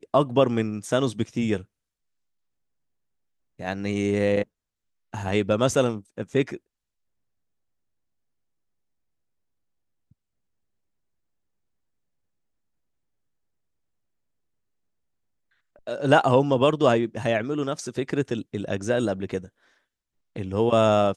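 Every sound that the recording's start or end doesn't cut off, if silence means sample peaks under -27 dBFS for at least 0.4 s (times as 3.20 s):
3.60–4.42 s
5.14–6.55 s
15.87–19.38 s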